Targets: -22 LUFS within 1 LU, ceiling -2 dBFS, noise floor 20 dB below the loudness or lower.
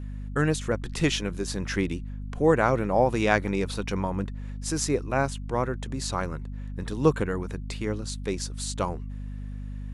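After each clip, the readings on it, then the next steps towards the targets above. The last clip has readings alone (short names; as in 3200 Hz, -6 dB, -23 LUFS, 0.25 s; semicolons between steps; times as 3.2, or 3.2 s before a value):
hum 50 Hz; harmonics up to 250 Hz; hum level -33 dBFS; loudness -27.5 LUFS; peak -5.5 dBFS; loudness target -22.0 LUFS
-> de-hum 50 Hz, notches 5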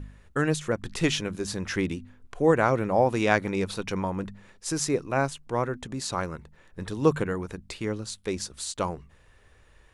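hum none; loudness -28.0 LUFS; peak -6.0 dBFS; loudness target -22.0 LUFS
-> gain +6 dB; limiter -2 dBFS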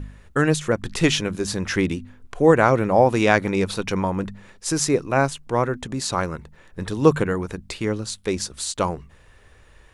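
loudness -22.0 LUFS; peak -2.0 dBFS; noise floor -52 dBFS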